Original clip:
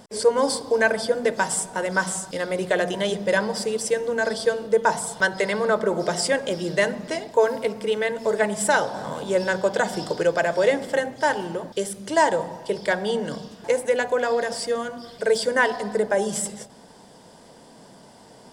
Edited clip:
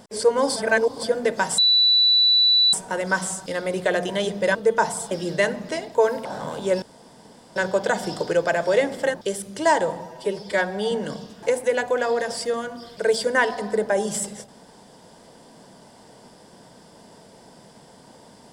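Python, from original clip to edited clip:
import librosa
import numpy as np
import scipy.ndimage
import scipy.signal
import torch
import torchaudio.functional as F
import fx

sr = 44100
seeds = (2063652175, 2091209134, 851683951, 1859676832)

y = fx.edit(x, sr, fx.reverse_span(start_s=0.56, length_s=0.47),
    fx.insert_tone(at_s=1.58, length_s=1.15, hz=3960.0, db=-13.5),
    fx.cut(start_s=3.4, length_s=1.22),
    fx.cut(start_s=5.18, length_s=1.32),
    fx.cut(start_s=7.64, length_s=1.25),
    fx.insert_room_tone(at_s=9.46, length_s=0.74),
    fx.cut(start_s=11.04, length_s=0.61),
    fx.stretch_span(start_s=12.54, length_s=0.59, factor=1.5), tone=tone)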